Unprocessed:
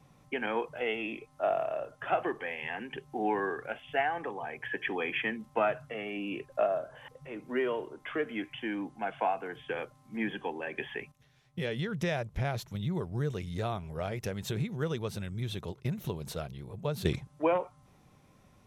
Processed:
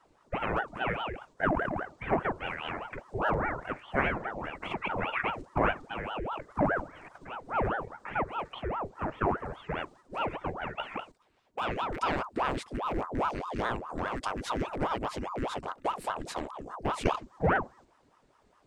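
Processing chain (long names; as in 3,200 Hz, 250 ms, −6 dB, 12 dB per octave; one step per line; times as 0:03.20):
loose part that buzzes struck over −36 dBFS, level −35 dBFS
formants moved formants −6 semitones
noise gate −56 dBFS, range −6 dB
ring modulator whose carrier an LFO sweeps 650 Hz, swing 80%, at 4.9 Hz
level +4.5 dB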